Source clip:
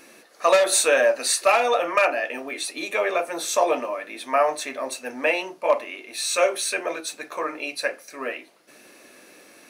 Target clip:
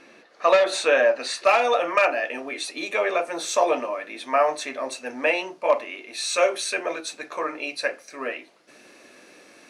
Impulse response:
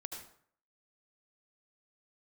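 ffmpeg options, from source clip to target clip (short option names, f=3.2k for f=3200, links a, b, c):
-af "asetnsamples=n=441:p=0,asendcmd='1.45 lowpass f 7600',lowpass=4k"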